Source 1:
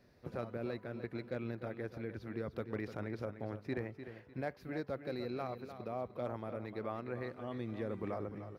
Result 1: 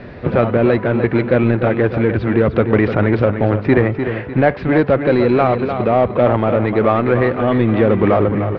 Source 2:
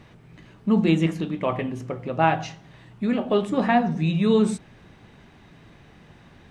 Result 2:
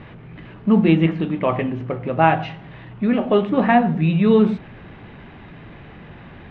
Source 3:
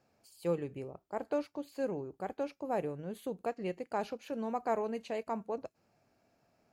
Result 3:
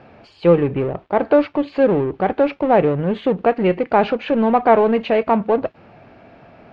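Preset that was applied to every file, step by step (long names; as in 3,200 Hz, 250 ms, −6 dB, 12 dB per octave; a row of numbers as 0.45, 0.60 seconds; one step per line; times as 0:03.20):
mu-law and A-law mismatch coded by mu
low-pass filter 3,100 Hz 24 dB per octave
normalise the peak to −1.5 dBFS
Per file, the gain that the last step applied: +24.0, +4.5, +18.5 decibels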